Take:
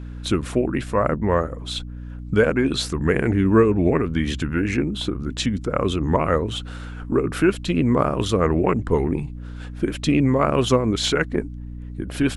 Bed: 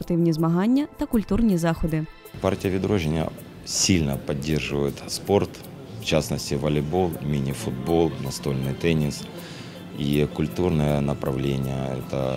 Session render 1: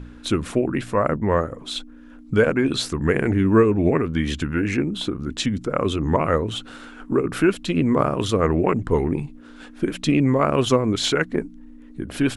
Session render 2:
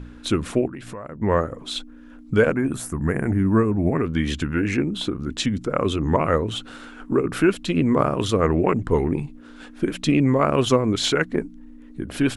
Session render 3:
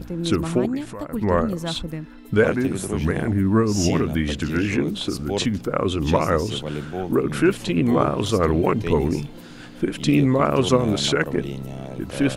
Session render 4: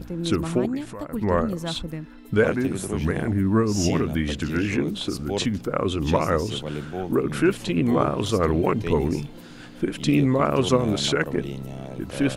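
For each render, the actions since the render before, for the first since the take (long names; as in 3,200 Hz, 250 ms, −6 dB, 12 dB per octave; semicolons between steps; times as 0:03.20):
hum removal 60 Hz, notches 3
0:00.67–0:01.21: downward compressor, threshold −32 dBFS; 0:02.56–0:03.98: drawn EQ curve 220 Hz 0 dB, 450 Hz −7 dB, 680 Hz −1 dB, 1,900 Hz −5 dB, 4,100 Hz −21 dB, 6,100 Hz −7 dB, 12,000 Hz +8 dB
mix in bed −6.5 dB
level −2 dB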